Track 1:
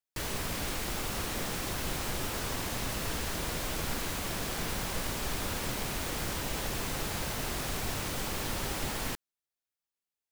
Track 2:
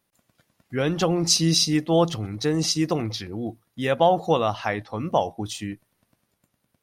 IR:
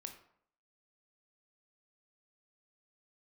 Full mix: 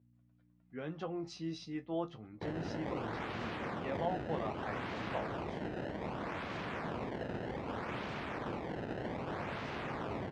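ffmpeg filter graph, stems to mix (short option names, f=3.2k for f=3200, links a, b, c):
-filter_complex "[0:a]acrusher=samples=22:mix=1:aa=0.000001:lfo=1:lforange=35.2:lforate=0.64,adelay=2250,volume=-3.5dB[a];[1:a]aeval=exprs='val(0)+0.00631*(sin(2*PI*60*n/s)+sin(2*PI*2*60*n/s)/2+sin(2*PI*3*60*n/s)/3+sin(2*PI*4*60*n/s)/4+sin(2*PI*5*60*n/s)/5)':c=same,flanger=delay=8.7:depth=7:regen=38:speed=0.3:shape=sinusoidal,volume=-14dB[b];[a][b]amix=inputs=2:normalize=0,highpass=110,lowpass=2.4k"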